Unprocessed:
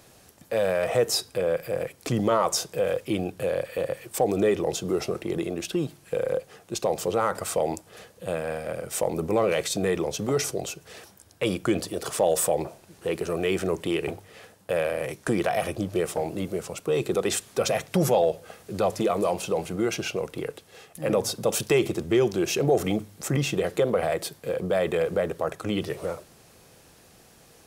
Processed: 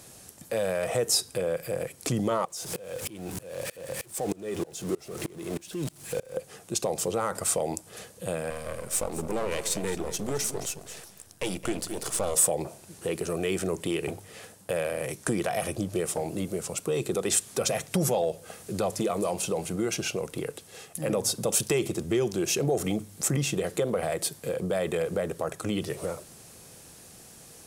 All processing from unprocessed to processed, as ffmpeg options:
-filter_complex "[0:a]asettb=1/sr,asplit=3[s0][s1][s2];[s0]atrim=end=2.454[s3];[s1]atrim=start=2.45:end=6.36,asetpts=PTS-STARTPTS,afade=t=in:d=0.004:c=qsin,afade=t=out:st=3.906:d=0.004:c=qsin,aeval=exprs='val(0)+0.5*0.0299*sgn(val(0))':c=same,aeval=exprs='val(0)*pow(10,-27*if(lt(mod(-3.2*n/s,1),2*abs(-3.2)/1000),1-mod(-3.2*n/s,1)/(2*abs(-3.2)/1000),(mod(-3.2*n/s,1)-2*abs(-3.2)/1000)/(1-2*abs(-3.2)/1000))/20)':c=same[s4];[s2]atrim=start=6.356[s5];[s3][s4]acrossfade=d=0.004:c1=hsin:c2=qsin[s6];[s6][s5]acrossfade=d=0.004:c1=qsin:c2=hsin,asettb=1/sr,asplit=3[s7][s8][s9];[s7]atrim=end=8.504[s10];[s8]atrim=start=8.5:end=12.35,asetpts=PTS-STARTPTS,afade=t=in:d=0.004:c=qsin,afade=t=out:st=3.846:d=0.004:c=qsin,aeval=exprs='if(lt(val(0),0),0.251*val(0),val(0))':c=same,aecho=1:1:217:0.211,atrim=end_sample=169785[s11];[s9]atrim=start=12.346[s12];[s10][s11]acrossfade=d=0.004:c1=hsin:c2=qsin[s13];[s13][s12]acrossfade=d=0.004:c1=qsin:c2=hsin,equalizer=f=160:w=0.66:g=3.5,acompressor=threshold=0.0224:ratio=1.5,equalizer=f=9000:w=0.73:g=10"

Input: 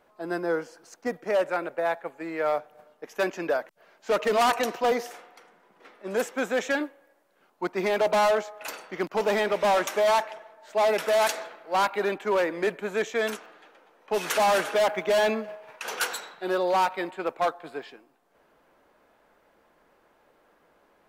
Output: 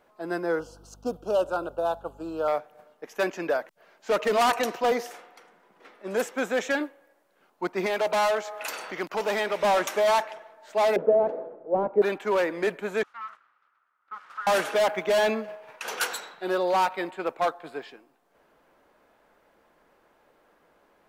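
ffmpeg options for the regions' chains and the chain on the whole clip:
-filter_complex "[0:a]asettb=1/sr,asplit=3[s0][s1][s2];[s0]atrim=end=0.594[s3];[s1]atrim=start=0.59:end=2.48,asetpts=PTS-STARTPTS,afade=t=in:d=0.004:c=qsin,afade=t=out:st=1.886:d=0.004:c=qsin,aeval=exprs='val(0)+0.00251*(sin(2*PI*50*n/s)+sin(2*PI*2*50*n/s)/2+sin(2*PI*3*50*n/s)/3+sin(2*PI*4*50*n/s)/4+sin(2*PI*5*50*n/s)/5)':c=same,asuperstop=centerf=2000:order=8:qfactor=1.6[s4];[s2]atrim=start=2.476[s5];[s3][s4]acrossfade=d=0.004:c1=hsin:c2=qsin[s6];[s6][s5]acrossfade=d=0.004:c1=qsin:c2=hsin,asettb=1/sr,asplit=3[s7][s8][s9];[s7]atrim=end=7.864[s10];[s8]atrim=start=7.86:end=9.6,asetpts=PTS-STARTPTS,afade=t=in:d=0.004:c=qsin,afade=t=out:st=1.736:d=0.004:c=qsin,acompressor=mode=upward:threshold=0.0562:ratio=2.5:attack=3.2:release=140:knee=2.83:detection=peak,lowshelf=f=480:g=-6.5[s11];[s9]atrim=start=9.596[s12];[s10][s11]acrossfade=d=0.004:c1=hsin:c2=qsin[s13];[s13][s12]acrossfade=d=0.004:c1=qsin:c2=hsin,asettb=1/sr,asplit=3[s14][s15][s16];[s14]atrim=end=10.964[s17];[s15]atrim=start=10.96:end=12.02,asetpts=PTS-STARTPTS,afade=t=in:d=0.004:c=qsin,afade=t=out:st=1.056:d=0.004:c=qsin,lowpass=f=490:t=q:w=2.5,equalizer=f=120:w=0.6:g=7[s18];[s16]atrim=start=12.016[s19];[s17][s18]acrossfade=d=0.004:c1=hsin:c2=qsin[s20];[s20][s19]acrossfade=d=0.004:c1=qsin:c2=hsin,asettb=1/sr,asplit=3[s21][s22][s23];[s21]atrim=end=13.034[s24];[s22]atrim=start=13.03:end=14.47,asetpts=PTS-STARTPTS,afade=t=in:d=0.004:c=qsin,afade=t=out:st=1.436:d=0.004:c=qsin,aeval=exprs='abs(val(0))':c=same,bandpass=f=1300:t=q:w=7[s25];[s23]atrim=start=14.466[s26];[s24][s25]acrossfade=d=0.004:c1=hsin:c2=qsin[s27];[s27][s26]acrossfade=d=0.004:c1=qsin:c2=hsin"

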